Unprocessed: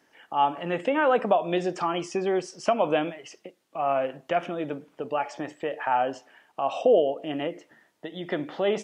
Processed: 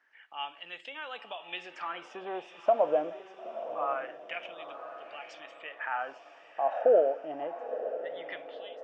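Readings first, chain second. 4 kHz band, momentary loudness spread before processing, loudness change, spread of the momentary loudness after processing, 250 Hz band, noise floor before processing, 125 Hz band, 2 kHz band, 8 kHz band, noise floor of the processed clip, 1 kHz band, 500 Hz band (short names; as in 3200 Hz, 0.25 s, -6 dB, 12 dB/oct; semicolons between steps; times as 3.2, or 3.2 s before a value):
-6.0 dB, 15 LU, -6.0 dB, 18 LU, -16.5 dB, -66 dBFS, under -20 dB, -6.5 dB, under -15 dB, -55 dBFS, -8.0 dB, -5.0 dB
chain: ending faded out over 0.52 s; LFO band-pass sine 0.25 Hz 600–3800 Hz; diffused feedback echo 0.948 s, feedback 41%, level -11 dB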